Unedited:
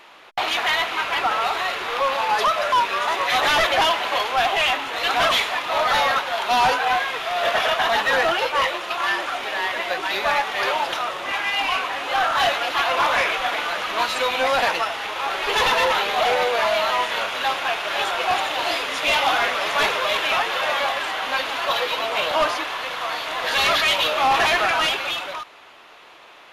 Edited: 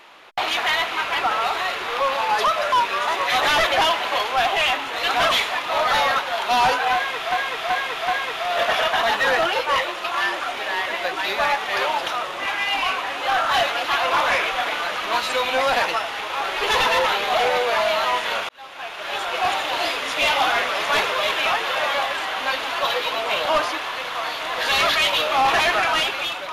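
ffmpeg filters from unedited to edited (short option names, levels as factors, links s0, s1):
-filter_complex "[0:a]asplit=5[s0][s1][s2][s3][s4];[s0]atrim=end=7.322[s5];[s1]atrim=start=6.938:end=7.322[s6];[s2]atrim=start=6.938:end=7.322[s7];[s3]atrim=start=6.938:end=17.35,asetpts=PTS-STARTPTS,afade=t=out:st=10.408:d=0.004:c=hsin[s8];[s4]atrim=start=17.35,asetpts=PTS-STARTPTS,afade=t=in:d=1.01[s9];[s5][s6]acrossfade=d=0.004:c1=hsin:c2=hsin[s10];[s10][s7]acrossfade=d=0.004:c1=hsin:c2=hsin[s11];[s8][s9]concat=n=2:v=0:a=1[s12];[s11][s12]acrossfade=d=0.004:c1=hsin:c2=hsin"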